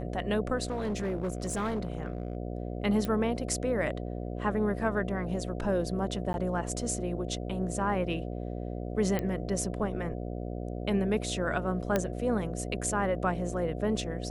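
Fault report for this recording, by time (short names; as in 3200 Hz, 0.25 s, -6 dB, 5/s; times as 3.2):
buzz 60 Hz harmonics 12 -36 dBFS
0.64–2.37 clipped -27.5 dBFS
3.05 pop -19 dBFS
6.33–6.34 gap
9.19 pop -17 dBFS
11.96 pop -13 dBFS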